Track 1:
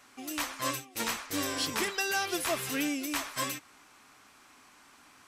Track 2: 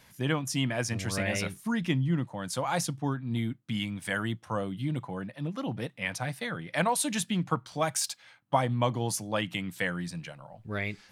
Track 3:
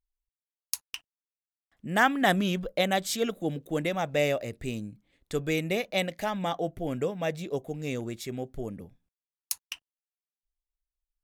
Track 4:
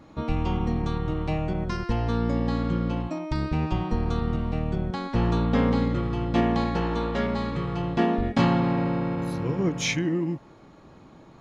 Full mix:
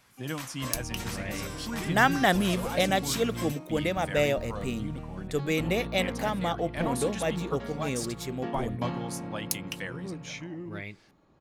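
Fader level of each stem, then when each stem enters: -7.5 dB, -7.0 dB, +0.5 dB, -13.5 dB; 0.00 s, 0.00 s, 0.00 s, 0.45 s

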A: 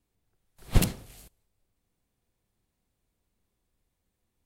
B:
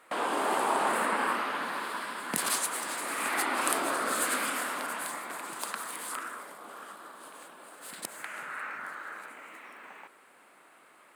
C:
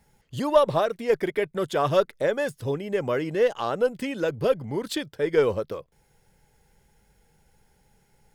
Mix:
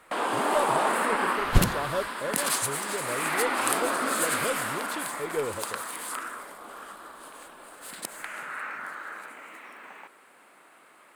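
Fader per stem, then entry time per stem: +1.5 dB, +2.5 dB, -9.5 dB; 0.80 s, 0.00 s, 0.00 s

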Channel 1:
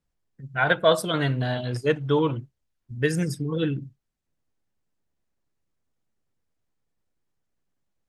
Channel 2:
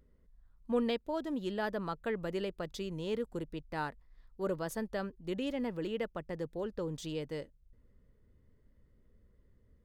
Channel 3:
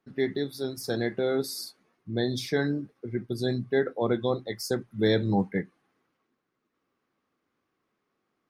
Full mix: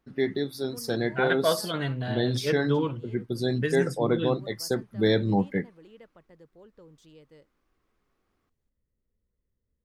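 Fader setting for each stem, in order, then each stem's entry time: -5.5 dB, -15.0 dB, +1.0 dB; 0.60 s, 0.00 s, 0.00 s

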